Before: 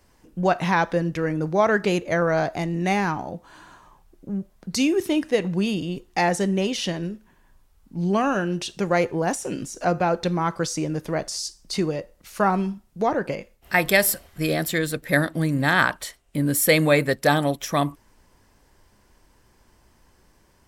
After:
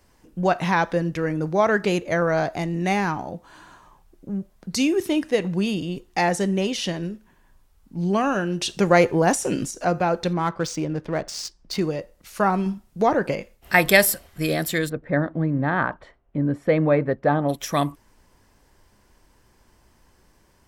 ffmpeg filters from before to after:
ffmpeg -i in.wav -filter_complex "[0:a]asettb=1/sr,asplit=3[link_01][link_02][link_03];[link_01]atrim=end=10.334[link_04];[link_02]atrim=start=10.33:end=11.81,asetpts=PTS-STARTPTS,afade=type=in:duration=0.004:curve=qsin,afade=type=out:start_time=1.476:duration=0.004:curve=qsin,adynamicsmooth=sensitivity=6.5:basefreq=2500[link_05];[link_03]atrim=start=11.806[link_06];[link_04][link_05]acrossfade=duration=0.004:curve1=hsin:curve2=qsin[link_07];[link_07][link_06]acrossfade=duration=0.004:curve1=qsin:curve2=hsin,asplit=3[link_08][link_09][link_10];[link_08]afade=type=out:start_time=14.88:duration=0.02[link_11];[link_09]lowpass=1200,afade=type=in:start_time=14.88:duration=0.02,afade=type=out:start_time=17.48:duration=0.02[link_12];[link_10]afade=type=in:start_time=17.48:duration=0.02[link_13];[link_11][link_12][link_13]amix=inputs=3:normalize=0,asplit=5[link_14][link_15][link_16][link_17][link_18];[link_14]atrim=end=8.622[link_19];[link_15]atrim=start=8.618:end=9.712,asetpts=PTS-STARTPTS,volume=5dB[link_20];[link_16]atrim=start=9.708:end=12.662[link_21];[link_17]atrim=start=12.658:end=14.052,asetpts=PTS-STARTPTS,volume=3dB[link_22];[link_18]atrim=start=14.048[link_23];[link_19][link_20]acrossfade=duration=0.004:curve1=hsin:curve2=hsin[link_24];[link_24][link_21]acrossfade=duration=0.004:curve1=hsin:curve2=hsin[link_25];[link_25][link_22]acrossfade=duration=0.004:curve1=hsin:curve2=hsin[link_26];[link_26][link_23]acrossfade=duration=0.004:curve1=hsin:curve2=hsin" out.wav

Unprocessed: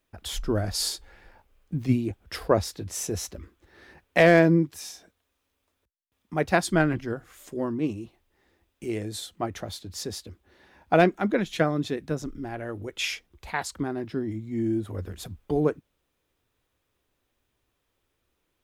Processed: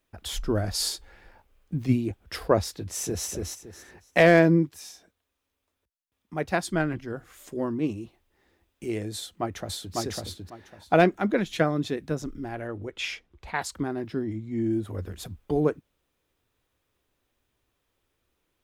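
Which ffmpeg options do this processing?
ffmpeg -i in.wav -filter_complex "[0:a]asplit=2[link_01][link_02];[link_02]afade=type=in:start_time=2.75:duration=0.01,afade=type=out:start_time=3.28:duration=0.01,aecho=0:1:280|560|840|1120:0.707946|0.176986|0.0442466|0.0110617[link_03];[link_01][link_03]amix=inputs=2:normalize=0,asplit=2[link_04][link_05];[link_05]afade=type=in:start_time=9.14:duration=0.01,afade=type=out:start_time=9.94:duration=0.01,aecho=0:1:550|1100|1650:0.891251|0.17825|0.03565[link_06];[link_04][link_06]amix=inputs=2:normalize=0,asettb=1/sr,asplit=3[link_07][link_08][link_09];[link_07]atrim=end=12.674[link_10];[link_08]atrim=start=12.67:end=13.55,asetpts=PTS-STARTPTS,afade=type=in:duration=0.004:curve=qsin,afade=type=out:start_time=0.876:duration=0.004:curve=qsin,aemphasis=mode=reproduction:type=50kf[link_11];[link_09]atrim=start=13.546[link_12];[link_10][link_11]acrossfade=duration=0.004:curve1=hsin:curve2=qsin[link_13];[link_13][link_12]acrossfade=duration=0.004:curve1=qsin:curve2=hsin,asettb=1/sr,asplit=3[link_14][link_15][link_16];[link_14]atrim=end=14.244[link_17];[link_15]atrim=start=14.24:end=14.71,asetpts=PTS-STARTPTS,afade=type=in:duration=0.004:curve=qsin,afade=type=out:start_time=0.466:duration=0.004:curve=qsin,highshelf=frequency=9200:gain=-10[link_18];[link_16]atrim=start=14.706[link_19];[link_17][link_18]acrossfade=duration=0.004:curve1=hsin:curve2=qsin[link_20];[link_20][link_19]acrossfade=duration=0.004:curve1=qsin:curve2=hsin,asplit=3[link_21][link_22][link_23];[link_21]atrim=end=4.692[link_24];[link_22]atrim=start=4.688:end=7.142,asetpts=PTS-STARTPTS,volume=-4dB[link_25];[link_23]atrim=start=7.138[link_26];[link_24][link_25]acrossfade=duration=0.004:curve1=hsin:curve2=hsin[link_27];[link_27][link_26]acrossfade=duration=0.004:curve1=hsin:curve2=hsin" out.wav

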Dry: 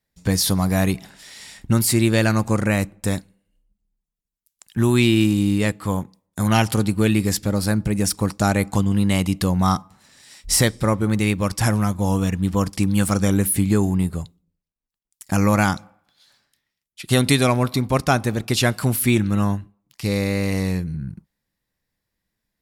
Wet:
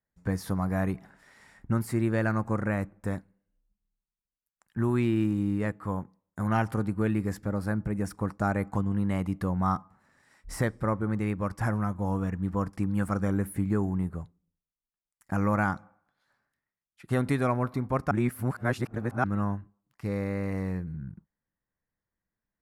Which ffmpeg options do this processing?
ffmpeg -i in.wav -filter_complex "[0:a]asplit=3[link_01][link_02][link_03];[link_01]atrim=end=18.112[link_04];[link_02]atrim=start=18.108:end=19.242,asetpts=PTS-STARTPTS,areverse[link_05];[link_03]atrim=start=19.238[link_06];[link_04][link_05]acrossfade=duration=0.004:curve1=hsin:curve2=hsin[link_07];[link_07][link_06]acrossfade=duration=0.004:curve1=hsin:curve2=hsin,highshelf=frequency=2300:width_type=q:width=1.5:gain=-13.5,volume=-9dB" out.wav

